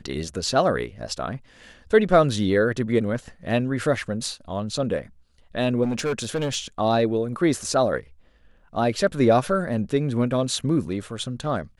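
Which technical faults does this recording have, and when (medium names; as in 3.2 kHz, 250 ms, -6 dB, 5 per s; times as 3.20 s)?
5.83–6.56 s: clipped -20.5 dBFS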